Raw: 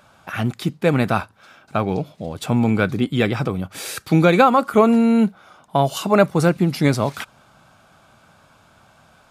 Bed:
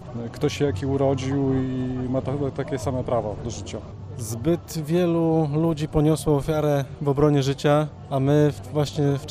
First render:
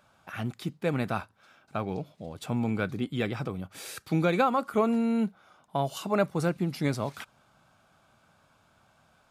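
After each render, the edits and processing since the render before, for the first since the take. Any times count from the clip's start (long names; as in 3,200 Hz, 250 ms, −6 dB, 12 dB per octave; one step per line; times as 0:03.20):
level −11 dB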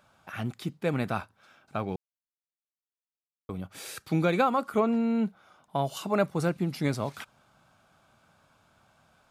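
0:01.96–0:03.49: silence
0:04.80–0:05.26: high-frequency loss of the air 83 metres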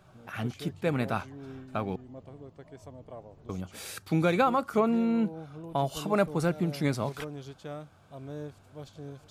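mix in bed −21.5 dB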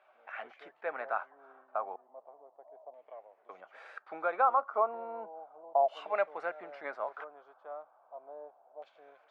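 auto-filter low-pass saw down 0.34 Hz 720–2,400 Hz
four-pole ladder high-pass 540 Hz, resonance 45%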